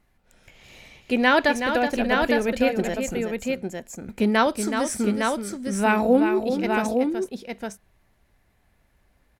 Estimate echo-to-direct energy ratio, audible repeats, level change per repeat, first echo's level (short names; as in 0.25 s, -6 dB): -2.5 dB, 2, no steady repeat, -7.5 dB